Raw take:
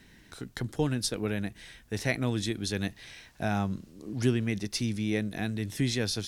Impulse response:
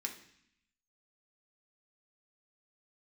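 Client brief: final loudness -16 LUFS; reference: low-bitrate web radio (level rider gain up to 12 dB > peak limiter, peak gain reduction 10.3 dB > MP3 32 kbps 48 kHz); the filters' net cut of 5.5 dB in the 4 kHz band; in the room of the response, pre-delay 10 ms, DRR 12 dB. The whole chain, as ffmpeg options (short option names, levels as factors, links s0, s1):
-filter_complex "[0:a]equalizer=f=4000:t=o:g=-7,asplit=2[s0][s1];[1:a]atrim=start_sample=2205,adelay=10[s2];[s1][s2]afir=irnorm=-1:irlink=0,volume=0.251[s3];[s0][s3]amix=inputs=2:normalize=0,dynaudnorm=m=3.98,alimiter=limit=0.075:level=0:latency=1,volume=8.91" -ar 48000 -c:a libmp3lame -b:a 32k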